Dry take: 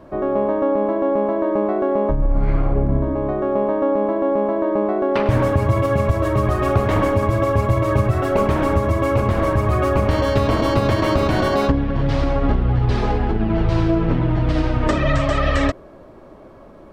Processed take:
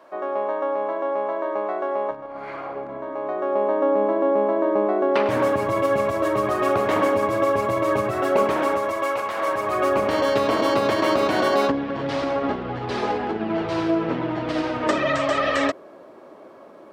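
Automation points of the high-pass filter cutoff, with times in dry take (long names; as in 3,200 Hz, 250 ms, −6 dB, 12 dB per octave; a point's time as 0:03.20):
0:03.12 690 Hz
0:03.98 300 Hz
0:08.39 300 Hz
0:09.29 830 Hz
0:09.92 310 Hz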